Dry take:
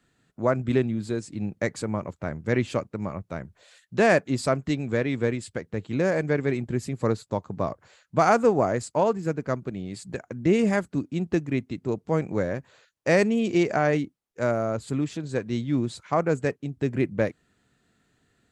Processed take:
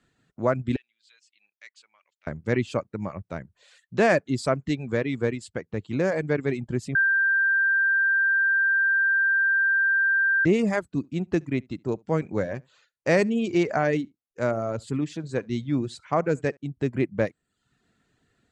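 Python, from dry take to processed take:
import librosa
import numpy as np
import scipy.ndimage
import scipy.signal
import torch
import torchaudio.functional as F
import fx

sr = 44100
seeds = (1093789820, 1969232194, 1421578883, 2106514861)

y = fx.ladder_bandpass(x, sr, hz=3400.0, resonance_pct=35, at=(0.76, 2.27))
y = fx.echo_single(y, sr, ms=70, db=-18.0, at=(10.96, 16.57))
y = fx.edit(y, sr, fx.bleep(start_s=6.95, length_s=3.5, hz=1580.0, db=-16.5), tone=tone)
y = scipy.signal.sosfilt(scipy.signal.bessel(2, 8100.0, 'lowpass', norm='mag', fs=sr, output='sos'), y)
y = fx.dereverb_blind(y, sr, rt60_s=0.55)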